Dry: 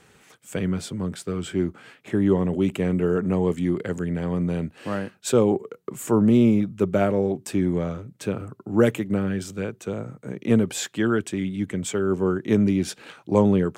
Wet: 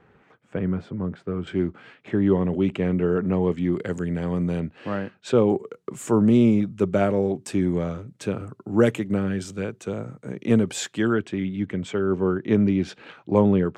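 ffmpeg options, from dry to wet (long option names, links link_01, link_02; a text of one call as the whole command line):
ffmpeg -i in.wav -af "asetnsamples=nb_out_samples=441:pad=0,asendcmd='1.47 lowpass f 3800;3.73 lowpass f 9600;4.6 lowpass f 3600;5.5 lowpass f 9300;11.13 lowpass f 3500',lowpass=1600" out.wav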